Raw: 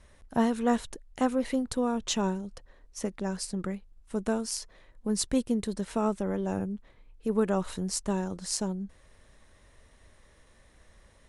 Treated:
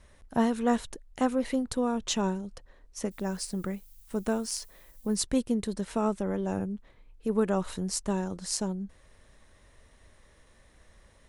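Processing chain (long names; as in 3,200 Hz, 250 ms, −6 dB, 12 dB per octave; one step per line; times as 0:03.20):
0:03.10–0:05.14: background noise violet −59 dBFS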